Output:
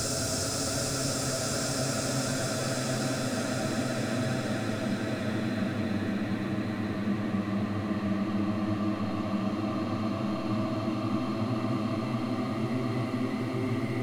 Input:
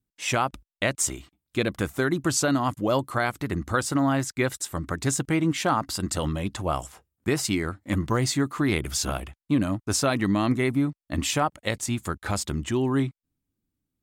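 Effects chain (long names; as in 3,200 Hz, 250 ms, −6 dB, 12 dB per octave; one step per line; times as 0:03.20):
low-shelf EQ 200 Hz +6 dB
hard clipping −20.5 dBFS, distortion −10 dB
output level in coarse steps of 17 dB
extreme stretch with random phases 25×, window 0.50 s, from 0:09.99
level +4 dB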